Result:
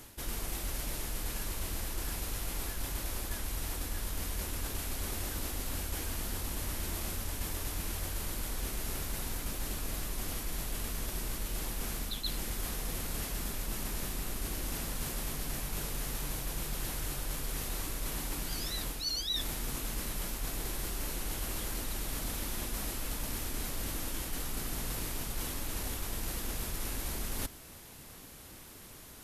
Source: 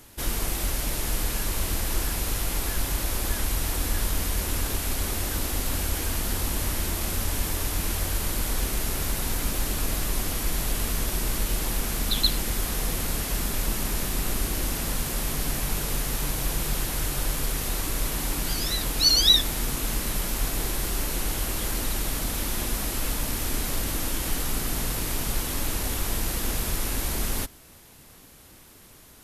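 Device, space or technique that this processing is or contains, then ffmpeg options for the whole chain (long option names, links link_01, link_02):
compression on the reversed sound: -af "areverse,acompressor=threshold=-33dB:ratio=6,areverse"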